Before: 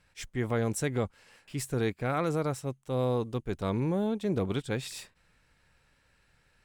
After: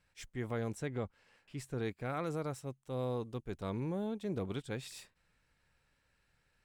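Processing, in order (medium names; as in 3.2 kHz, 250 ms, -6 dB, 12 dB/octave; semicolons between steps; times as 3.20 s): 0.73–1.84 s: treble shelf 5.5 kHz -> 7.9 kHz -11.5 dB; trim -8 dB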